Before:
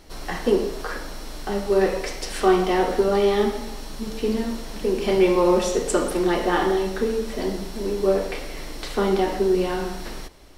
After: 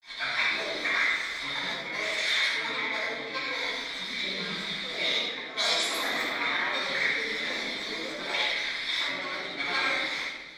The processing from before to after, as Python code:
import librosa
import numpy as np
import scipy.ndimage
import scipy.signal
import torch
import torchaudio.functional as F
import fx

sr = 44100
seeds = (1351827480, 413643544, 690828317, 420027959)

y = fx.over_compress(x, sr, threshold_db=-23.0, ratio=-0.5)
y = fx.granulator(y, sr, seeds[0], grain_ms=100.0, per_s=20.0, spray_ms=100.0, spread_st=7)
y = fx.double_bandpass(y, sr, hz=2800.0, octaves=0.74)
y = fx.room_shoebox(y, sr, seeds[1], volume_m3=760.0, walls='mixed', distance_m=9.0)